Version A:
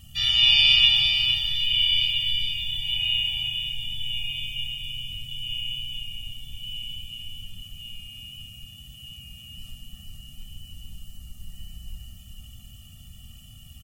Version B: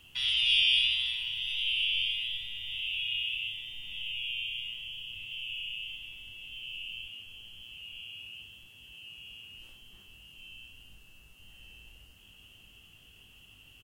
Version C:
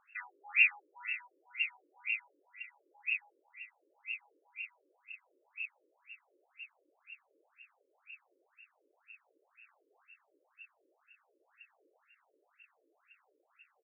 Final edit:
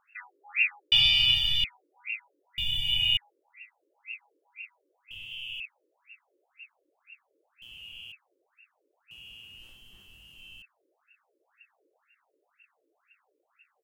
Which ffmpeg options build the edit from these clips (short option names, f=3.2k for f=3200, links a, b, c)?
-filter_complex "[0:a]asplit=2[a][b];[1:a]asplit=3[c][d][e];[2:a]asplit=6[f][g][h][i][j][k];[f]atrim=end=0.922[l];[a]atrim=start=0.918:end=1.642[m];[g]atrim=start=1.638:end=2.582[n];[b]atrim=start=2.578:end=3.172[o];[h]atrim=start=3.168:end=5.112[p];[c]atrim=start=5.108:end=5.602[q];[i]atrim=start=5.598:end=7.622[r];[d]atrim=start=7.618:end=8.122[s];[j]atrim=start=8.118:end=9.112[t];[e]atrim=start=9.108:end=10.622[u];[k]atrim=start=10.618[v];[l][m]acrossfade=d=0.004:c1=hsin:c2=hsin[w];[w][n]acrossfade=d=0.004:c1=hsin:c2=hsin[x];[x][o]acrossfade=d=0.004:c1=hsin:c2=hsin[y];[y][p]acrossfade=d=0.004:c1=hsin:c2=hsin[z];[z][q]acrossfade=d=0.004:c1=hsin:c2=hsin[aa];[aa][r]acrossfade=d=0.004:c1=hsin:c2=hsin[ab];[ab][s]acrossfade=d=0.004:c1=hsin:c2=hsin[ac];[ac][t]acrossfade=d=0.004:c1=hsin:c2=hsin[ad];[ad][u]acrossfade=d=0.004:c1=hsin:c2=hsin[ae];[ae][v]acrossfade=d=0.004:c1=hsin:c2=hsin"